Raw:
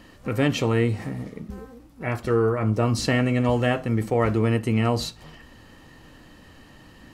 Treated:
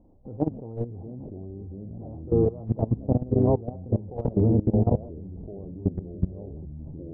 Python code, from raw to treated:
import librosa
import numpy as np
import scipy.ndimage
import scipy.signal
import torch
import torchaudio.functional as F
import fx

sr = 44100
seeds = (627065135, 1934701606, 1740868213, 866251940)

y = scipy.signal.sosfilt(scipy.signal.ellip(4, 1.0, 60, 810.0, 'lowpass', fs=sr, output='sos'), x)
y = fx.low_shelf(y, sr, hz=70.0, db=9.5)
y = fx.echo_pitch(y, sr, ms=585, semitones=-3, count=3, db_per_echo=-3.0)
y = fx.level_steps(y, sr, step_db=19)
y = fx.record_warp(y, sr, rpm=78.0, depth_cents=160.0)